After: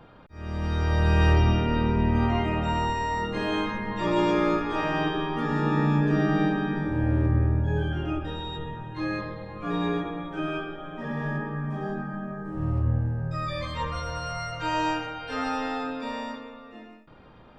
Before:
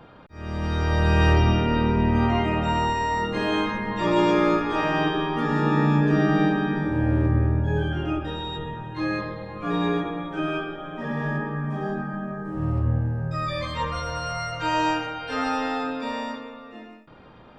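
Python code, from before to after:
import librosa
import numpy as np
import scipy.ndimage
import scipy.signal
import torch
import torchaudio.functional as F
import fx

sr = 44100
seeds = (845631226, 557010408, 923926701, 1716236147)

y = fx.low_shelf(x, sr, hz=64.0, db=7.0)
y = y * 10.0 ** (-3.5 / 20.0)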